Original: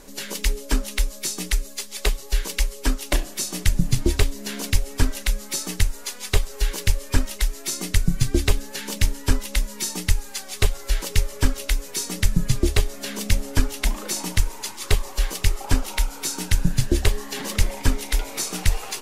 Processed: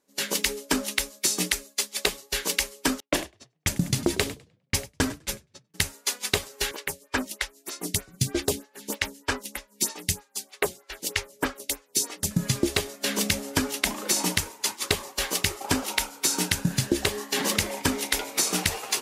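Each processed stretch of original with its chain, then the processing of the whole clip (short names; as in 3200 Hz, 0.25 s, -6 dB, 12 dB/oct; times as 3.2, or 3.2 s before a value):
3–5.74 gate -25 dBFS, range -27 dB + frequency-shifting echo 0.101 s, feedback 59%, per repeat +30 Hz, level -17 dB + low-pass opened by the level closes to 1800 Hz, open at -16 dBFS
6.71–12.31 de-hum 184.7 Hz, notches 3 + photocell phaser 3.2 Hz
whole clip: HPF 170 Hz 12 dB/oct; expander -28 dBFS; compressor, threshold -27 dBFS; gain +7 dB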